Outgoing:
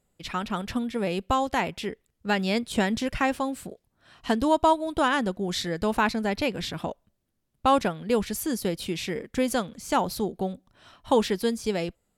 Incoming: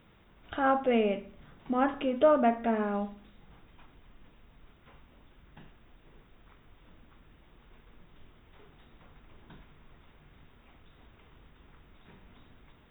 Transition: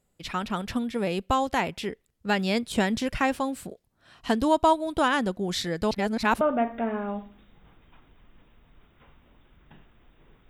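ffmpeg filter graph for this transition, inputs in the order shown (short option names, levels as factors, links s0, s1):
-filter_complex "[0:a]apad=whole_dur=10.49,atrim=end=10.49,asplit=2[s0][s1];[s0]atrim=end=5.912[s2];[s1]atrim=start=5.908:end=6.412,asetpts=PTS-STARTPTS,areverse[s3];[1:a]atrim=start=2.268:end=6.35[s4];[s2][s3]acrossfade=d=0.004:c1=hsin:c2=hsin[s5];[s5][s4]acrossfade=d=0.004:c1=hsin:c2=hsin"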